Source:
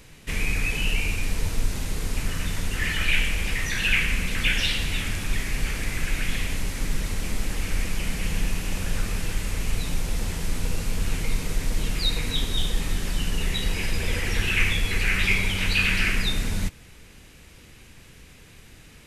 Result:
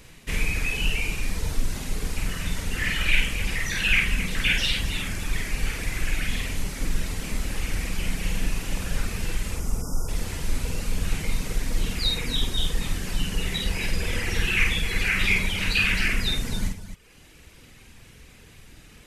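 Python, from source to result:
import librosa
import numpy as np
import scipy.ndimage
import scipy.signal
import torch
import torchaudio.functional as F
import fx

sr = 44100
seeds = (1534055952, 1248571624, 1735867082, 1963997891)

y = fx.dereverb_blind(x, sr, rt60_s=1.1)
y = fx.spec_erase(y, sr, start_s=9.55, length_s=0.53, low_hz=1500.0, high_hz=4800.0)
y = fx.echo_multitap(y, sr, ms=(49, 107, 266), db=(-3.0, -14.5, -10.5))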